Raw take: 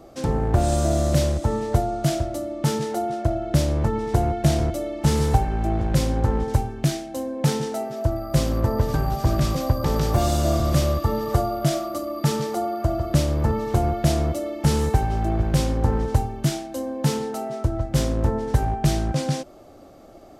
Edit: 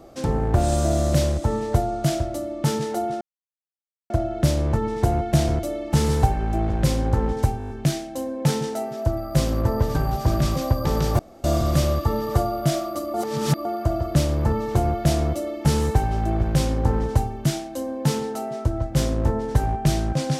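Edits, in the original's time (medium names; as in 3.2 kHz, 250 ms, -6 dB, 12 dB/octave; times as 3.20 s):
3.21 s: insert silence 0.89 s
6.69 s: stutter 0.02 s, 7 plays
10.18–10.43 s: room tone
12.13–12.64 s: reverse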